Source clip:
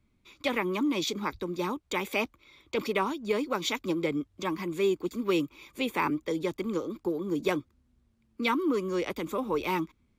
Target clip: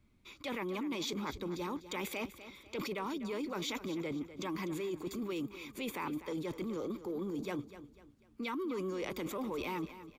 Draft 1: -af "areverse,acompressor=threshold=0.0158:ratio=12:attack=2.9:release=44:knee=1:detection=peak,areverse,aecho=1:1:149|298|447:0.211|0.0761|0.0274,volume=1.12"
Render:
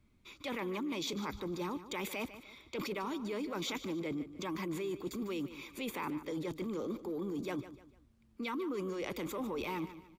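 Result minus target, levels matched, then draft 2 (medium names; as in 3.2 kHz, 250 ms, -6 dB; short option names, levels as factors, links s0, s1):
echo 99 ms early
-af "areverse,acompressor=threshold=0.0158:ratio=12:attack=2.9:release=44:knee=1:detection=peak,areverse,aecho=1:1:248|496|744:0.211|0.0761|0.0274,volume=1.12"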